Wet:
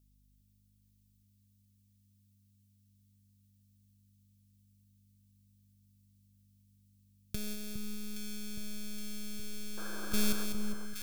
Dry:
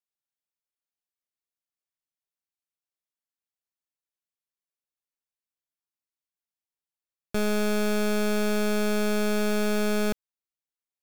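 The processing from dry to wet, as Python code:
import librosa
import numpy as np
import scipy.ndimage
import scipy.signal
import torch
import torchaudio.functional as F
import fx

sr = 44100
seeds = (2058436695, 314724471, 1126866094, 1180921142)

p1 = fx.echo_feedback(x, sr, ms=200, feedback_pct=46, wet_db=-13.5)
p2 = fx.over_compress(p1, sr, threshold_db=-30.0, ratio=-0.5)
p3 = fx.spec_paint(p2, sr, seeds[0], shape='noise', start_s=9.77, length_s=0.68, low_hz=300.0, high_hz=1700.0, level_db=-31.0)
p4 = fx.curve_eq(p3, sr, hz=(120.0, 860.0, 3400.0, 5100.0), db=(0, -22, -2, 0))
p5 = fx.add_hum(p4, sr, base_hz=50, snr_db=27)
p6 = fx.high_shelf(p5, sr, hz=11000.0, db=7.0)
y = p6 + fx.echo_alternate(p6, sr, ms=410, hz=1300.0, feedback_pct=80, wet_db=-6, dry=0)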